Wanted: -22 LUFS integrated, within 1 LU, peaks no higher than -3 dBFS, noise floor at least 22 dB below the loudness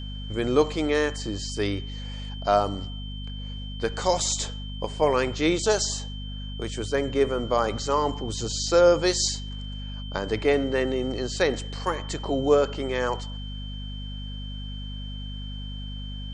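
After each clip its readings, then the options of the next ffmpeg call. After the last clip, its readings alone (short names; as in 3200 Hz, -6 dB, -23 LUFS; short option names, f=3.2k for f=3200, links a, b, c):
hum 50 Hz; harmonics up to 250 Hz; hum level -32 dBFS; steady tone 3100 Hz; tone level -41 dBFS; loudness -26.5 LUFS; peak -8.0 dBFS; loudness target -22.0 LUFS
-> -af "bandreject=f=50:t=h:w=6,bandreject=f=100:t=h:w=6,bandreject=f=150:t=h:w=6,bandreject=f=200:t=h:w=6,bandreject=f=250:t=h:w=6"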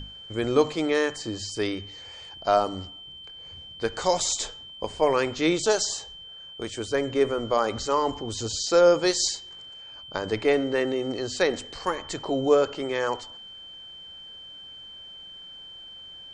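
hum none; steady tone 3100 Hz; tone level -41 dBFS
-> -af "bandreject=f=3.1k:w=30"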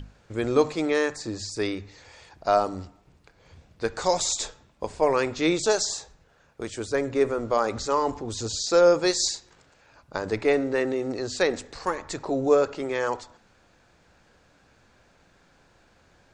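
steady tone none; loudness -25.5 LUFS; peak -8.0 dBFS; loudness target -22.0 LUFS
-> -af "volume=3.5dB"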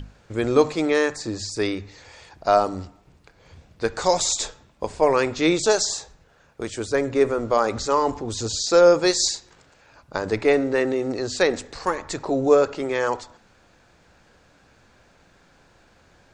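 loudness -22.0 LUFS; peak -4.5 dBFS; noise floor -57 dBFS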